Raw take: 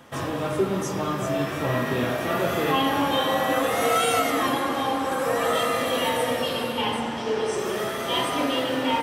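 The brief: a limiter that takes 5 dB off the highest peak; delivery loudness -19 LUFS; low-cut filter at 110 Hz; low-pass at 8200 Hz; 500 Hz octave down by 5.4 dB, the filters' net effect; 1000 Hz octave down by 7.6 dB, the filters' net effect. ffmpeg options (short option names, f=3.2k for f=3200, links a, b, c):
-af "highpass=110,lowpass=8.2k,equalizer=f=500:t=o:g=-4,equalizer=f=1k:t=o:g=-9,volume=10dB,alimiter=limit=-9.5dB:level=0:latency=1"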